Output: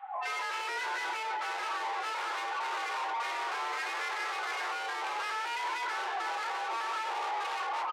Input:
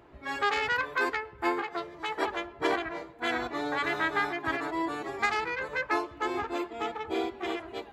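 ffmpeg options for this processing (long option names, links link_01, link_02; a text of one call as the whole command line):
ffmpeg -i in.wav -filter_complex "[0:a]aemphasis=mode=reproduction:type=75kf,afftdn=noise_reduction=28:noise_floor=-43,adynamicequalizer=threshold=0.00316:dfrequency=500:dqfactor=4.6:tfrequency=500:tqfactor=4.6:attack=5:release=100:ratio=0.375:range=3.5:mode=boostabove:tftype=bell,dynaudnorm=framelen=120:gausssize=11:maxgain=14dB,highpass=frequency=200:width_type=q:width=0.5412,highpass=frequency=200:width_type=q:width=1.307,lowpass=frequency=3400:width_type=q:width=0.5176,lowpass=frequency=3400:width_type=q:width=0.7071,lowpass=frequency=3400:width_type=q:width=1.932,afreqshift=120,acompressor=threshold=-21dB:ratio=10,asplit=2[link_01][link_02];[link_02]highpass=frequency=720:poles=1,volume=37dB,asoftclip=type=tanh:threshold=-13dB[link_03];[link_01][link_03]amix=inputs=2:normalize=0,lowpass=frequency=2400:poles=1,volume=-6dB,asoftclip=type=tanh:threshold=-23dB,afreqshift=330,asplit=6[link_04][link_05][link_06][link_07][link_08][link_09];[link_05]adelay=88,afreqshift=-61,volume=-23dB[link_10];[link_06]adelay=176,afreqshift=-122,volume=-26.9dB[link_11];[link_07]adelay=264,afreqshift=-183,volume=-30.8dB[link_12];[link_08]adelay=352,afreqshift=-244,volume=-34.6dB[link_13];[link_09]adelay=440,afreqshift=-305,volume=-38.5dB[link_14];[link_04][link_10][link_11][link_12][link_13][link_14]amix=inputs=6:normalize=0,alimiter=level_in=5.5dB:limit=-24dB:level=0:latency=1,volume=-5.5dB,asplit=2[link_15][link_16];[link_16]adelay=33,volume=-11dB[link_17];[link_15][link_17]amix=inputs=2:normalize=0,volume=1.5dB" out.wav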